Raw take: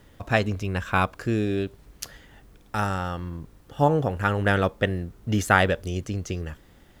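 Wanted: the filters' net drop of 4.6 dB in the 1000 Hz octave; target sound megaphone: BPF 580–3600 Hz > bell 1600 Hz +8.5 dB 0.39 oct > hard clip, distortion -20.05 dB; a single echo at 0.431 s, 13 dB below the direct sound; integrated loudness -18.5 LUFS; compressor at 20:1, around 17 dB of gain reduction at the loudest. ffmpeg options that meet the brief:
-af "equalizer=f=1k:t=o:g=-8.5,acompressor=threshold=-34dB:ratio=20,highpass=580,lowpass=3.6k,equalizer=f=1.6k:t=o:w=0.39:g=8.5,aecho=1:1:431:0.224,asoftclip=type=hard:threshold=-28dB,volume=25.5dB"

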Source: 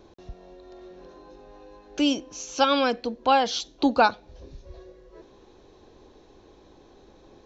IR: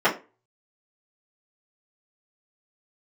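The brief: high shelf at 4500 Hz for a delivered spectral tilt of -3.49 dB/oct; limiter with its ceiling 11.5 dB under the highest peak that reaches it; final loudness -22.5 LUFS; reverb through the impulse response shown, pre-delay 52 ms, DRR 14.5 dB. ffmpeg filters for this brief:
-filter_complex "[0:a]highshelf=f=4.5k:g=-6.5,alimiter=limit=-18.5dB:level=0:latency=1,asplit=2[a][b];[1:a]atrim=start_sample=2205,adelay=52[c];[b][c]afir=irnorm=-1:irlink=0,volume=-33.5dB[d];[a][d]amix=inputs=2:normalize=0,volume=7.5dB"

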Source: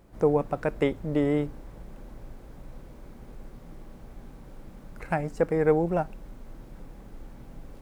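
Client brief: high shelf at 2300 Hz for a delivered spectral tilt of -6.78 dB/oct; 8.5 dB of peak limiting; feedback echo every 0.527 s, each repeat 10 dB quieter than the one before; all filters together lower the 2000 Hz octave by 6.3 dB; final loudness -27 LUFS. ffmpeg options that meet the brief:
-af "equalizer=f=2k:t=o:g=-6,highshelf=f=2.3k:g=-4.5,alimiter=limit=-20dB:level=0:latency=1,aecho=1:1:527|1054|1581|2108:0.316|0.101|0.0324|0.0104,volume=5dB"

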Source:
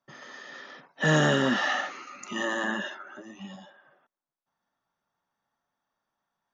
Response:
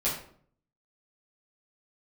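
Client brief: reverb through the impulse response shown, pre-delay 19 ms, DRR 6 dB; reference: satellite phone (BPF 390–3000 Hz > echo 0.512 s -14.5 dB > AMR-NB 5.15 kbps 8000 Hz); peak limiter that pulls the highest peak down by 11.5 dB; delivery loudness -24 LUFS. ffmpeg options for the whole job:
-filter_complex "[0:a]alimiter=limit=-23dB:level=0:latency=1,asplit=2[a][b];[1:a]atrim=start_sample=2205,adelay=19[c];[b][c]afir=irnorm=-1:irlink=0,volume=-14.5dB[d];[a][d]amix=inputs=2:normalize=0,highpass=390,lowpass=3k,aecho=1:1:512:0.188,volume=14.5dB" -ar 8000 -c:a libopencore_amrnb -b:a 5150

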